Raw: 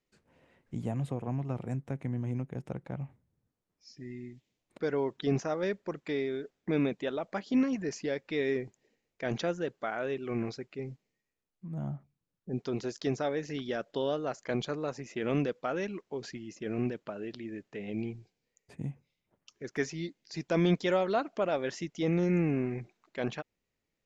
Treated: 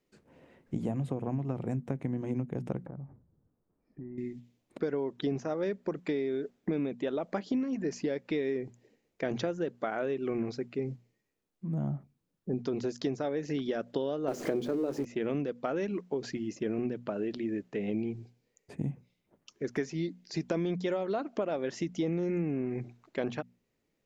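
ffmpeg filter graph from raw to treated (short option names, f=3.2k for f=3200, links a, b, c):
-filter_complex "[0:a]asettb=1/sr,asplit=3[a][b][c];[a]atrim=end=2.864[d];[b]atrim=start=2.86:end=4.18,asetpts=PTS-STARTPTS,afade=t=in:d=0.004:c=qsin,afade=t=out:st=1.316:d=0.004:c=qsin,lowpass=f=1.5k:w=0.5412,lowpass=f=1.5k:w=1.3066,lowshelf=f=80:g=9,acompressor=threshold=-45dB:ratio=12:attack=3.2:release=140:knee=1:detection=peak[e];[c]atrim=start=4.176[f];[d][e]acrossfade=d=0.004:c1=hsin:c2=qsin[g];[g][f]acrossfade=d=0.004:c1=qsin:c2=hsin,asettb=1/sr,asplit=3[h][i][j];[h]atrim=end=14.284[k];[i]atrim=start=14.28:end=15.05,asetpts=PTS-STARTPTS,afade=t=in:d=0.004:c=qsin,afade=t=out:st=0.766:d=0.004:c=qsin,aeval=exprs='val(0)+0.5*0.0133*sgn(val(0))':c=same,equalizer=f=350:w=0.94:g=11.5,bandreject=f=50:t=h:w=6,bandreject=f=100:t=h:w=6,bandreject=f=150:t=h:w=6,bandreject=f=200:t=h:w=6,bandreject=f=250:t=h:w=6,bandreject=f=300:t=h:w=6,bandreject=f=350:t=h:w=6,bandreject=f=400:t=h:w=6,bandreject=f=450:t=h:w=6,bandreject=f=500:t=h:w=6[l];[j]atrim=start=15.046[m];[k][l]acrossfade=d=0.004:c1=hsin:c2=qsin[n];[n][m]acrossfade=d=0.004:c1=qsin:c2=hsin,equalizer=f=290:w=0.49:g=7,bandreject=f=60:t=h:w=6,bandreject=f=120:t=h:w=6,bandreject=f=180:t=h:w=6,bandreject=f=240:t=h:w=6,acompressor=threshold=-30dB:ratio=10,volume=2dB"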